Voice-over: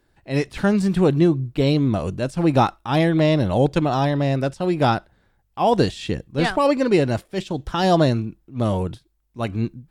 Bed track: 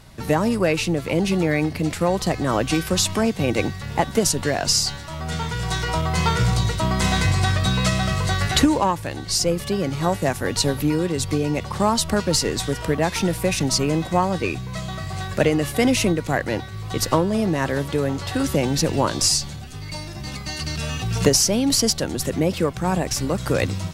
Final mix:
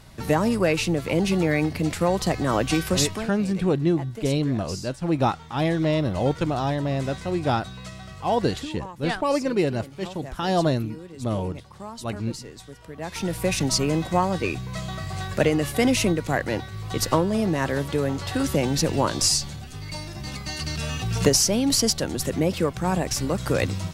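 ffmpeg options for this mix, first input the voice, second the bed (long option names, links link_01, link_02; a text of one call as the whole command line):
ffmpeg -i stem1.wav -i stem2.wav -filter_complex "[0:a]adelay=2650,volume=-5dB[link_01];[1:a]volume=15dB,afade=type=out:start_time=2.94:duration=0.37:silence=0.141254,afade=type=in:start_time=12.93:duration=0.57:silence=0.149624[link_02];[link_01][link_02]amix=inputs=2:normalize=0" out.wav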